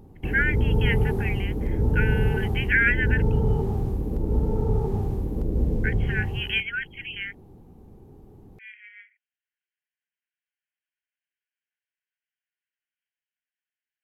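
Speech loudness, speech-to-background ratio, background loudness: -27.5 LUFS, -1.5 dB, -26.0 LUFS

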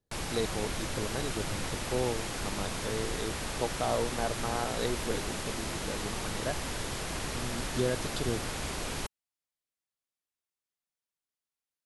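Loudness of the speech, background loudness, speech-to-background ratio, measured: -36.5 LUFS, -35.5 LUFS, -1.0 dB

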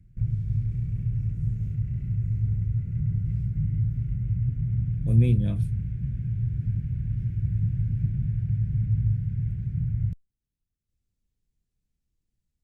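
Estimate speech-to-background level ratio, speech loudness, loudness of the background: 2.5 dB, -25.5 LUFS, -28.0 LUFS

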